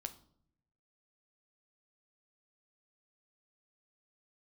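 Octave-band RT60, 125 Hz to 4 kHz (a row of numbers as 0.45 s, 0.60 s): 1.2 s, 0.95 s, 0.70 s, 0.55 s, 0.40 s, 0.45 s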